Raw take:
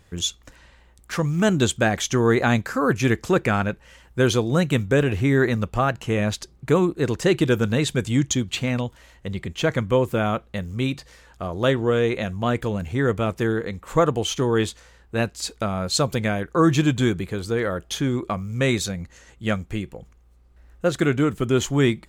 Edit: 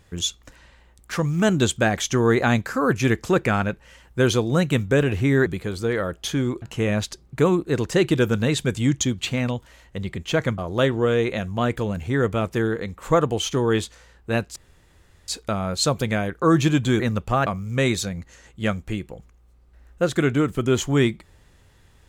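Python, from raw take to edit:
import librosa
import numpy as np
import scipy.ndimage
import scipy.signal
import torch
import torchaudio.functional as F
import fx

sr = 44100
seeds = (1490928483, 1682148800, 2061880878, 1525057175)

y = fx.edit(x, sr, fx.swap(start_s=5.46, length_s=0.46, other_s=17.13, other_length_s=1.16),
    fx.cut(start_s=9.88, length_s=1.55),
    fx.insert_room_tone(at_s=15.41, length_s=0.72), tone=tone)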